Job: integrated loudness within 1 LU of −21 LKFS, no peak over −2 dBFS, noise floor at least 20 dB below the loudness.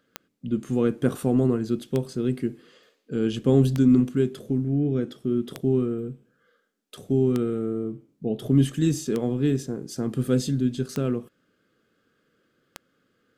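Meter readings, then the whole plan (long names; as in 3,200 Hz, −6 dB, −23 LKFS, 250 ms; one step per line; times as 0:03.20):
number of clicks 8; integrated loudness −25.0 LKFS; sample peak −7.5 dBFS; target loudness −21.0 LKFS
→ click removal
level +4 dB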